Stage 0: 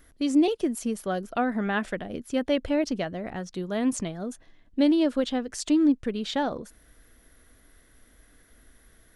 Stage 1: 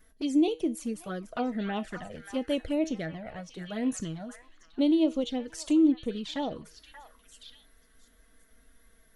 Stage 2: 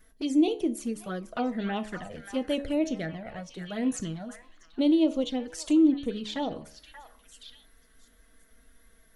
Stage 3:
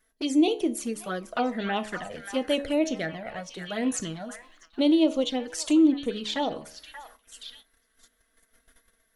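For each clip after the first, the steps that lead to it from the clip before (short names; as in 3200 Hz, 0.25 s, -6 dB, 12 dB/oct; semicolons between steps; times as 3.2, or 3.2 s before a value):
resonator 160 Hz, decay 0.28 s, harmonics all, mix 60%; envelope flanger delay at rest 4.9 ms, full sweep at -28.5 dBFS; delay with a stepping band-pass 0.58 s, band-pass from 1400 Hz, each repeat 1.4 oct, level -6 dB; gain +3.5 dB
de-hum 70.43 Hz, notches 17; gain +1.5 dB
gate -54 dBFS, range -12 dB; low shelf 270 Hz -11 dB; gain +6 dB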